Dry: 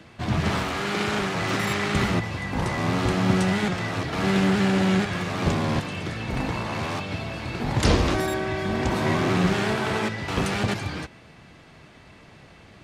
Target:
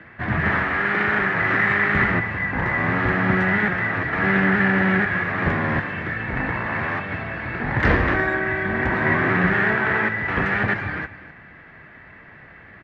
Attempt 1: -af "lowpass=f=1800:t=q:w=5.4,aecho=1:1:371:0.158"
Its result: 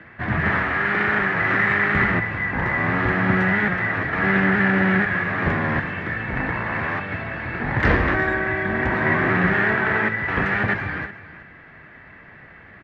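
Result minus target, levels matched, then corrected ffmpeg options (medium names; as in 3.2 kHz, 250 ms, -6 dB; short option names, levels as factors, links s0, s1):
echo 116 ms late
-af "lowpass=f=1800:t=q:w=5.4,aecho=1:1:255:0.158"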